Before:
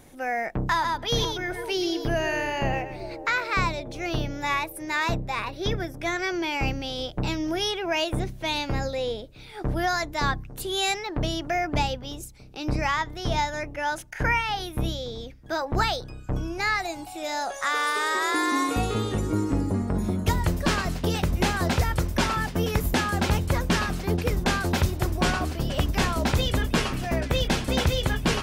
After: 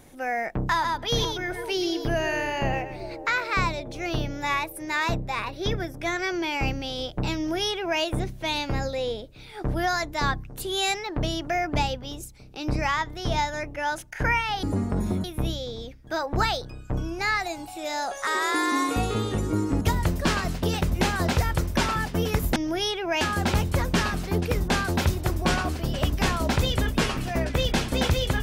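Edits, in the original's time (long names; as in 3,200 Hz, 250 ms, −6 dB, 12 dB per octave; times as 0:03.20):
0:07.36–0:08.01: duplicate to 0:22.97
0:17.66–0:18.07: remove
0:19.61–0:20.22: move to 0:14.63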